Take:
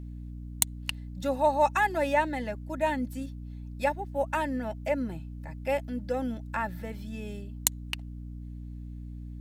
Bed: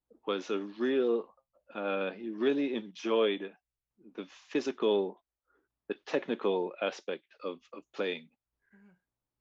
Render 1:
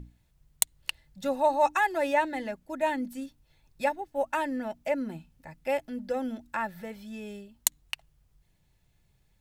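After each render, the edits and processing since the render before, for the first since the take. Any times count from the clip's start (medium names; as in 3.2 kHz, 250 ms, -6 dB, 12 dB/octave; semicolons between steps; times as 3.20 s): hum notches 60/120/180/240/300 Hz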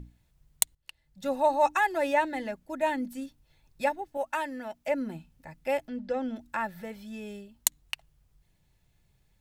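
0.75–1.33 s: fade in quadratic, from -16.5 dB; 4.17–4.88 s: bass shelf 450 Hz -9 dB; 5.88–6.36 s: low-pass 5.1 kHz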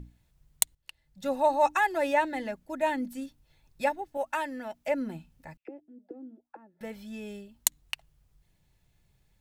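5.57–6.81 s: auto-wah 310–2800 Hz, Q 9.2, down, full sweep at -30.5 dBFS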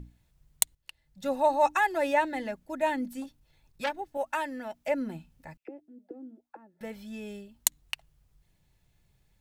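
3.22–3.95 s: transformer saturation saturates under 2 kHz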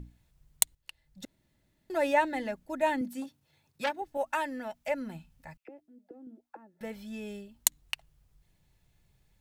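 1.25–1.90 s: room tone; 3.01–4.02 s: high-pass 93 Hz 24 dB/octave; 4.70–6.27 s: peaking EQ 340 Hz -8 dB 1.2 oct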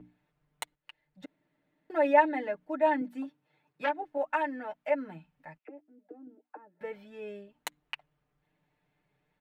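three-band isolator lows -22 dB, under 190 Hz, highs -22 dB, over 2.7 kHz; comb 6.7 ms, depth 76%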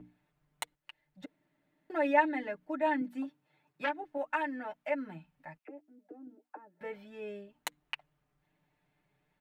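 band-stop 470 Hz, Q 12; dynamic bell 680 Hz, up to -6 dB, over -39 dBFS, Q 1.2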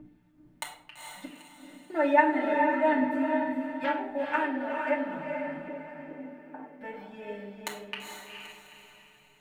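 echo that smears into a reverb 452 ms, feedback 40%, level -3.5 dB; simulated room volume 1000 m³, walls furnished, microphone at 2.6 m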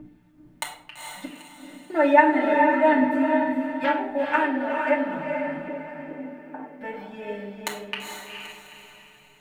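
trim +6 dB; peak limiter -3 dBFS, peak gain reduction 1 dB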